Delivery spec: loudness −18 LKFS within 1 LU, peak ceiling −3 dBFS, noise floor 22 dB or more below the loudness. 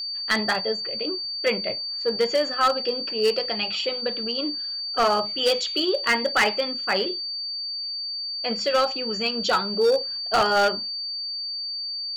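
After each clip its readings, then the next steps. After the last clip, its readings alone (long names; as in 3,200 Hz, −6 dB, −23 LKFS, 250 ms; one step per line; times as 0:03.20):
share of clipped samples 0.8%; peaks flattened at −14.5 dBFS; interfering tone 4,600 Hz; level of the tone −28 dBFS; integrated loudness −23.5 LKFS; sample peak −14.5 dBFS; target loudness −18.0 LKFS
→ clipped peaks rebuilt −14.5 dBFS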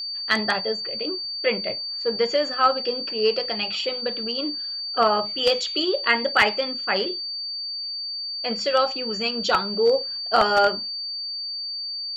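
share of clipped samples 0.0%; interfering tone 4,600 Hz; level of the tone −28 dBFS
→ notch filter 4,600 Hz, Q 30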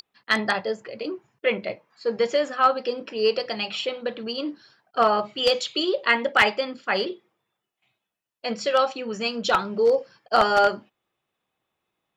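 interfering tone none found; integrated loudness −24.0 LKFS; sample peak −5.0 dBFS; target loudness −18.0 LKFS
→ level +6 dB
brickwall limiter −3 dBFS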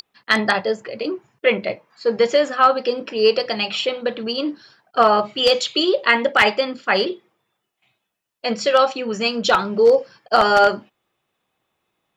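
integrated loudness −18.5 LKFS; sample peak −3.0 dBFS; background noise floor −77 dBFS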